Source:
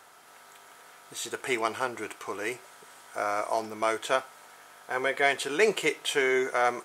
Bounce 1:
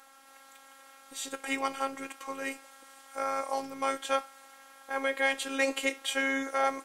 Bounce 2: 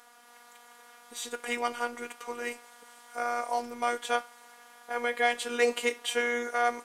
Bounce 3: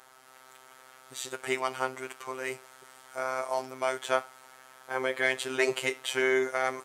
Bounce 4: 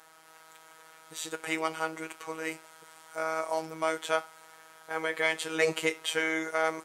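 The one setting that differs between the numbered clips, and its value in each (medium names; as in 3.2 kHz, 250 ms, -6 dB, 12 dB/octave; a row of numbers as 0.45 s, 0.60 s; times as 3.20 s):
robot voice, frequency: 270 Hz, 240 Hz, 130 Hz, 160 Hz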